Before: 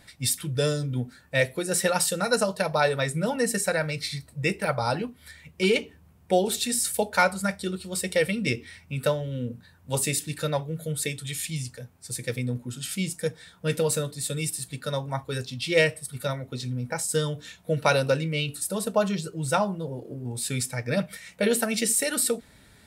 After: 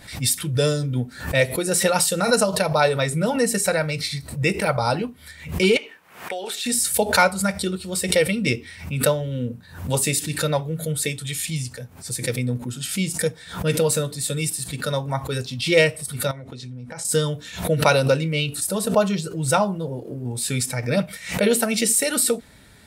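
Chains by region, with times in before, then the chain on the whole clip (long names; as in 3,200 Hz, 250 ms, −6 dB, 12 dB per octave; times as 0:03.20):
0:05.77–0:06.66: high-pass filter 430 Hz + parametric band 1,900 Hz +11 dB 2 octaves + downward compressor, threshold −31 dBFS
0:16.31–0:17.05: low-pass filter 8,200 Hz + downward compressor 5 to 1, threshold −38 dBFS
whole clip: dynamic equaliser 1,700 Hz, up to −6 dB, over −48 dBFS, Q 7.6; background raised ahead of every attack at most 110 dB per second; level +4.5 dB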